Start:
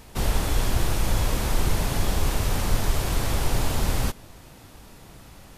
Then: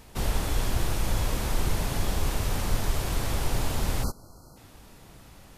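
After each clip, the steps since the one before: spectral selection erased 4.03–4.57 s, 1.5–4 kHz; trim -3.5 dB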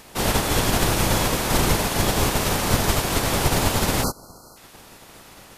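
spectral peaks clipped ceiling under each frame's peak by 17 dB; trim +3.5 dB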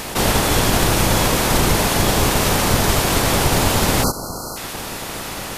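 level flattener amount 50%; trim +2 dB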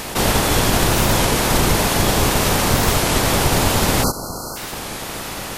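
warped record 33 1/3 rpm, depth 160 cents

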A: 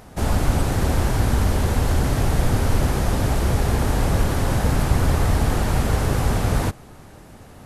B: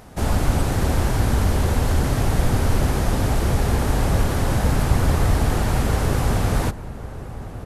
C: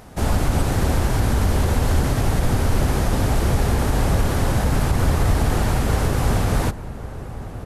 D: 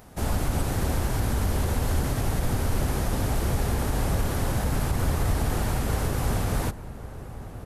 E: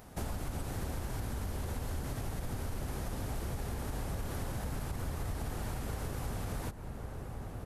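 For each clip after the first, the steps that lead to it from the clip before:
echo from a far wall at 190 m, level -13 dB
loudness maximiser +9 dB; trim -8 dB
treble shelf 12 kHz +10 dB; trim -6.5 dB
compression 5:1, threshold -31 dBFS, peak gain reduction 10.5 dB; trim -3.5 dB

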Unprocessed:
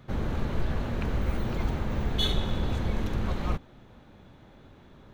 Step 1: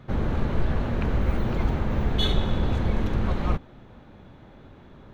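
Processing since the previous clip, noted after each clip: treble shelf 4.5 kHz -10 dB; trim +4.5 dB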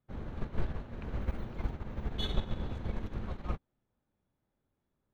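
upward expansion 2.5:1, over -36 dBFS; trim -6 dB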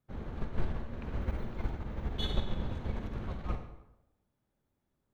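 tape echo 98 ms, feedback 53%, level -13 dB, low-pass 1.5 kHz; reverberation RT60 0.80 s, pre-delay 37 ms, DRR 7 dB

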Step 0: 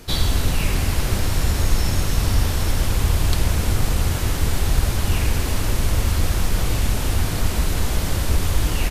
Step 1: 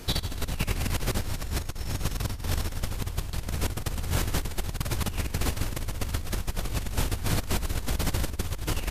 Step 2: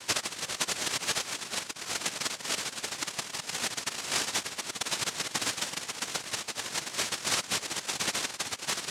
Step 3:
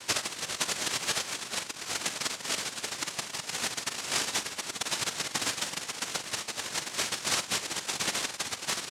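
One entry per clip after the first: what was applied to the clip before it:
compressor with a negative ratio -22 dBFS, ratio -0.5; trim -5.5 dB
noise-vocoded speech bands 1
doubling 43 ms -13 dB

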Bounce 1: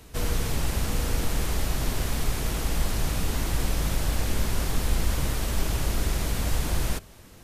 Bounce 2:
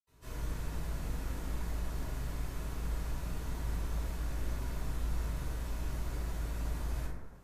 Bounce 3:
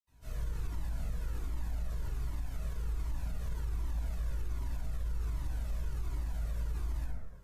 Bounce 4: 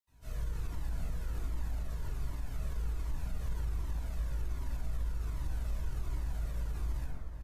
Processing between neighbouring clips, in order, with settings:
reverberation RT60 1.4 s, pre-delay 67 ms; trim +1 dB
bass shelf 150 Hz +4.5 dB; peak limiter -27.5 dBFS, peak gain reduction 7.5 dB; Shepard-style flanger falling 1.3 Hz; trim +1 dB
echo from a far wall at 64 m, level -8 dB

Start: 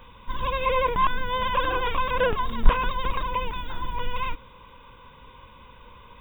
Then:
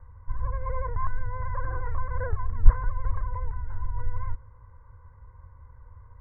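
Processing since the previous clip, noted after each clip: steep low-pass 2 kHz 96 dB/octave; resonant low shelf 140 Hz +13 dB, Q 3; trim -11.5 dB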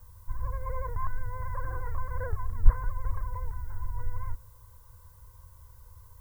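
added noise violet -58 dBFS; trim -3.5 dB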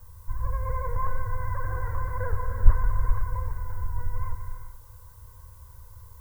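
gated-style reverb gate 450 ms flat, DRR 3 dB; trim +3 dB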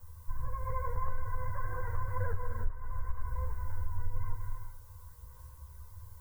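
compression 16:1, threshold -23 dBFS, peak gain reduction 18.5 dB; chorus voices 2, 0.46 Hz, delay 12 ms, depth 3.7 ms; trim -1 dB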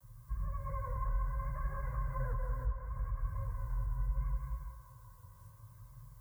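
frequency shift +35 Hz; vibrato 0.73 Hz 39 cents; band-passed feedback delay 186 ms, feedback 76%, band-pass 860 Hz, level -6 dB; trim -6 dB

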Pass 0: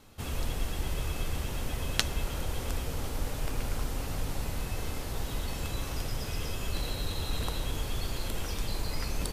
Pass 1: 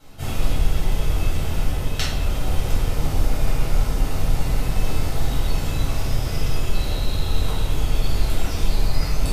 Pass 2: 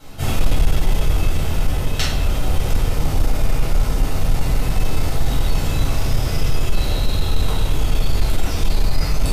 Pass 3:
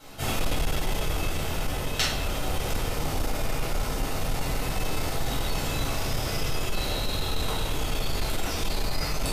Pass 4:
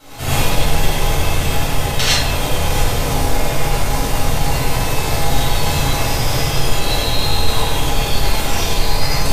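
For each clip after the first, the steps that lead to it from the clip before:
gain riding within 3 dB 0.5 s; reverberation RT60 0.85 s, pre-delay 3 ms, DRR -10 dB; trim -5.5 dB
gain riding 2 s; saturation -9 dBFS, distortion -19 dB; trim +4 dB
bass shelf 190 Hz -11 dB; trim -2 dB
gated-style reverb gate 130 ms rising, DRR -7 dB; trim +4 dB

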